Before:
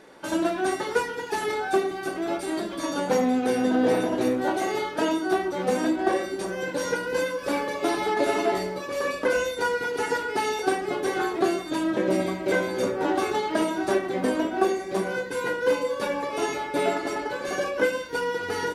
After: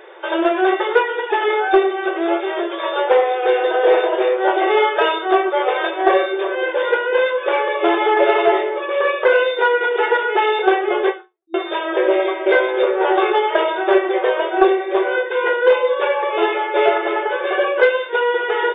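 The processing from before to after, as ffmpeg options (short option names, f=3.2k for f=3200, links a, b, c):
-filter_complex "[0:a]asettb=1/sr,asplit=3[a][b][c];[a]atrim=end=4.694[d];[b]atrim=start=4.69:end=6.55,asetpts=PTS-STARTPTS,afade=t=in:d=0.004:c=qsin,afade=t=out:st=1.856:d=0.004:c=qsin,aecho=1:1:7:0.65,atrim=end_sample=82026[e];[c]atrim=start=6.546[f];[d][e]acrossfade=d=0.004:c1=hsin:c2=qsin[g];[g][f]acrossfade=d=0.004:c1=qsin:c2=hsin,asplit=2[h][i];[h]atrim=end=11.54,asetpts=PTS-STARTPTS,afade=t=out:st=11.09:d=0.45:c=exp[j];[i]atrim=start=11.54,asetpts=PTS-STARTPTS,afade=t=in:d=0.004:c=hsin[k];[j][k]concat=n=2:v=0:a=1,afftfilt=real='re*between(b*sr/4096,330,3700)':imag='im*between(b*sr/4096,330,3700)':win_size=4096:overlap=0.75,acontrast=68,volume=3.5dB"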